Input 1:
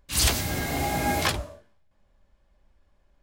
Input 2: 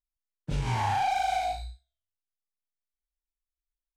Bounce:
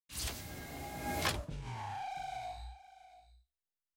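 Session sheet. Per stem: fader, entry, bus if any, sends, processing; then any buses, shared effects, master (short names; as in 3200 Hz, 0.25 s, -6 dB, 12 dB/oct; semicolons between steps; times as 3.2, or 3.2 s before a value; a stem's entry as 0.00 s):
0.95 s -17.5 dB -> 1.25 s -8.5 dB, 0.00 s, no send, no echo send, gate -52 dBFS, range -56 dB; ending taper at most 260 dB/s
-7.0 dB, 1.00 s, no send, echo send -16 dB, compressor 4:1, threshold -34 dBFS, peak gain reduction 8.5 dB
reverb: off
echo: echo 0.683 s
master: dry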